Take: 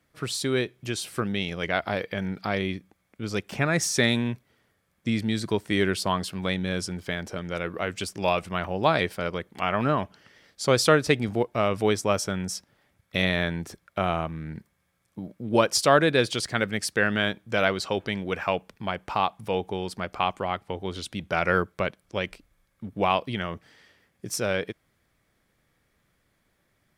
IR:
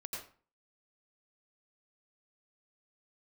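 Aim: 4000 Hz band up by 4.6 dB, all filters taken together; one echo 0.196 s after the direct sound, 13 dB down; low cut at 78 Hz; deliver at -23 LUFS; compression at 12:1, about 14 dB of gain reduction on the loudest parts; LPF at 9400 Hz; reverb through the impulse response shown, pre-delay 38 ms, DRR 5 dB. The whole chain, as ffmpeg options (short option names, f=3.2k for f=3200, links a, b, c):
-filter_complex "[0:a]highpass=78,lowpass=9.4k,equalizer=f=4k:t=o:g=6,acompressor=threshold=-28dB:ratio=12,aecho=1:1:196:0.224,asplit=2[a][b];[1:a]atrim=start_sample=2205,adelay=38[c];[b][c]afir=irnorm=-1:irlink=0,volume=-4dB[d];[a][d]amix=inputs=2:normalize=0,volume=10dB"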